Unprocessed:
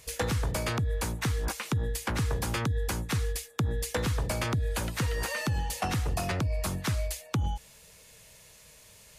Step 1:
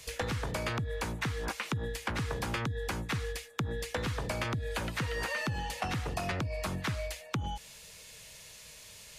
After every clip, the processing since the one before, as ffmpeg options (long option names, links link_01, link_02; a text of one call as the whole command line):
ffmpeg -i in.wav -filter_complex "[0:a]equalizer=frequency=3800:width=0.53:gain=6.5,acrossover=split=130|2600[link_01][link_02][link_03];[link_01]acompressor=threshold=-39dB:ratio=4[link_04];[link_02]acompressor=threshold=-32dB:ratio=4[link_05];[link_03]acompressor=threshold=-46dB:ratio=4[link_06];[link_04][link_05][link_06]amix=inputs=3:normalize=0" out.wav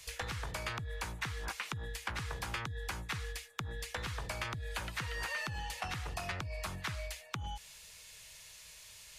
ffmpeg -i in.wav -af "equalizer=frequency=125:width_type=o:width=1:gain=-4,equalizer=frequency=250:width_type=o:width=1:gain=-10,equalizer=frequency=500:width_type=o:width=1:gain=-6,volume=-2.5dB" out.wav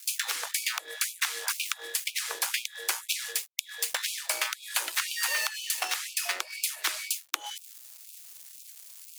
ffmpeg -i in.wav -af "aeval=exprs='sgn(val(0))*max(abs(val(0))-0.00316,0)':channel_layout=same,crystalizer=i=4:c=0,afftfilt=real='re*gte(b*sr/1024,290*pow(2300/290,0.5+0.5*sin(2*PI*2*pts/sr)))':imag='im*gte(b*sr/1024,290*pow(2300/290,0.5+0.5*sin(2*PI*2*pts/sr)))':win_size=1024:overlap=0.75,volume=6dB" out.wav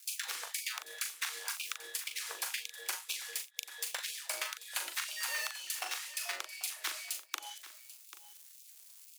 ffmpeg -i in.wav -filter_complex "[0:a]asplit=2[link_01][link_02];[link_02]adelay=40,volume=-7.5dB[link_03];[link_01][link_03]amix=inputs=2:normalize=0,aecho=1:1:789:0.168,volume=-8.5dB" out.wav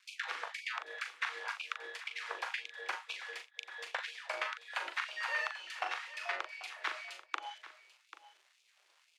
ffmpeg -i in.wav -af "highpass=380,lowpass=2000,volume=6dB" out.wav